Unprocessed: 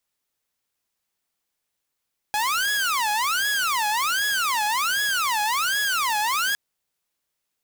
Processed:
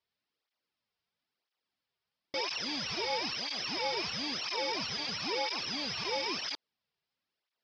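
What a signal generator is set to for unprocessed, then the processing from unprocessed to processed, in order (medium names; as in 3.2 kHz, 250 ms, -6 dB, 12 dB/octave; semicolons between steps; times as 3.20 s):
siren wail 834–1680 Hz 1.3 per s saw -18.5 dBFS 4.21 s
bit-reversed sample order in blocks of 32 samples; Chebyshev low-pass 5.2 kHz, order 5; cancelling through-zero flanger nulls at 1 Hz, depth 4 ms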